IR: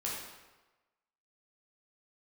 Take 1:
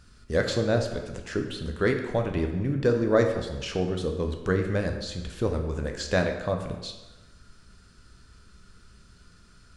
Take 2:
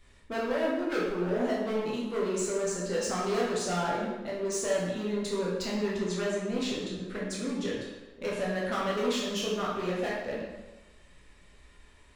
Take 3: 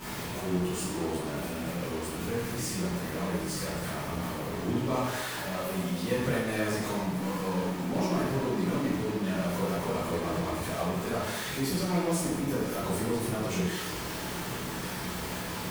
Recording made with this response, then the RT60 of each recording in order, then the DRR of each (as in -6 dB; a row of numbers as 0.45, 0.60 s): 2; 1.2, 1.2, 1.2 s; 3.5, -5.5, -12.0 dB